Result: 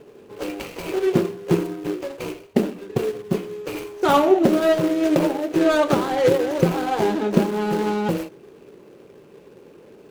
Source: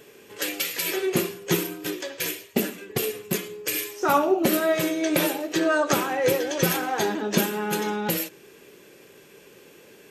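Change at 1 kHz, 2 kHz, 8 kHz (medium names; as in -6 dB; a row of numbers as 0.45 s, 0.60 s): +3.0 dB, -2.5 dB, -9.5 dB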